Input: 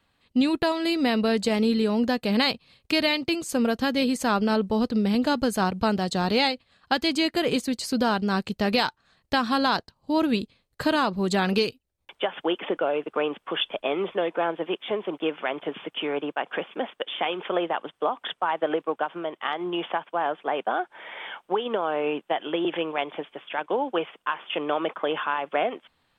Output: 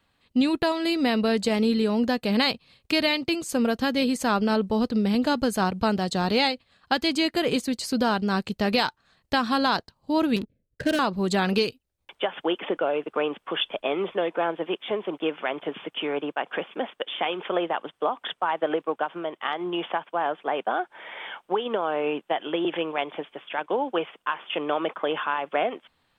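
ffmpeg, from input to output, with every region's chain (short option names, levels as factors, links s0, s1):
-filter_complex "[0:a]asettb=1/sr,asplit=3[s0][s1][s2];[s0]atrim=end=10.364[s3];[s1]atrim=start=10.36:end=10.99,asetpts=PTS-STARTPTS,afade=t=in:d=0.004:c=qsin,afade=t=out:st=0.626:d=0.004:c=qsin,asuperstop=centerf=1000:order=12:qfactor=1.2,adynamicsmooth=sensitivity=5:basefreq=520[s4];[s2]atrim=start=10.986[s5];[s3][s4]acrossfade=d=0.004:c1=hsin:c2=qsin[s6];[s6][s5]acrossfade=d=0.004:c1=qsin:c2=hsin"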